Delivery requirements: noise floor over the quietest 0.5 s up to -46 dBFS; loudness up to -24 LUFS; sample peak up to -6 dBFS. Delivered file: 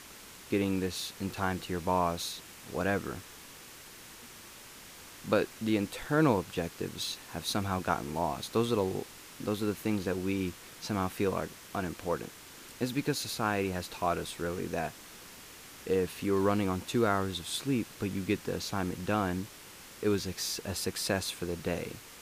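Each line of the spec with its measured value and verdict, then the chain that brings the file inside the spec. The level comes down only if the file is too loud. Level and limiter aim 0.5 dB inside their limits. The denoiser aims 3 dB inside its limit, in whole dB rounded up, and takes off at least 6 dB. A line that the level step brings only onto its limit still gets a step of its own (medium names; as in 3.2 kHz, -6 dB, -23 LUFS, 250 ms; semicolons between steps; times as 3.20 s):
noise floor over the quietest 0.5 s -50 dBFS: pass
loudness -32.5 LUFS: pass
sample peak -12.0 dBFS: pass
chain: none needed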